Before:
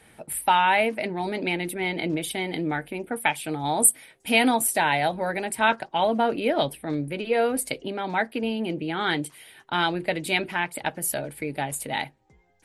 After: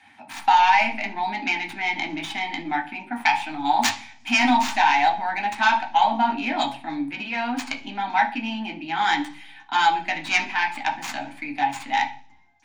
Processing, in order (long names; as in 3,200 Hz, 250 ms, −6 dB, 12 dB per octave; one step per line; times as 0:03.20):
stylus tracing distortion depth 0.45 ms
drawn EQ curve 100 Hz 0 dB, 170 Hz −12 dB, 250 Hz +3 dB, 470 Hz −24 dB, 850 Hz +13 dB, 1,200 Hz +1 dB, 2,800 Hz +4 dB, 4,700 Hz +5 dB, 7,000 Hz +6 dB, 11,000 Hz −11 dB
convolution reverb RT60 0.50 s, pre-delay 3 ms, DRR 0.5 dB
boost into a limiter −1 dB
level −6.5 dB